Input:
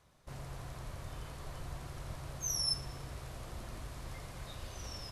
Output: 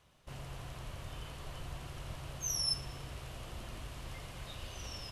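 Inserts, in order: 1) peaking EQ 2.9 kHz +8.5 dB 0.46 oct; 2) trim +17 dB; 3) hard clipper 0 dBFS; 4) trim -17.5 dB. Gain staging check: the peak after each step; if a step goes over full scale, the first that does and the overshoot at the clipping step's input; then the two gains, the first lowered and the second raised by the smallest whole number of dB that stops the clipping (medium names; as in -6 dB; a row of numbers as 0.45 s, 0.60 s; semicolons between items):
-22.0 dBFS, -5.0 dBFS, -5.0 dBFS, -22.5 dBFS; nothing clips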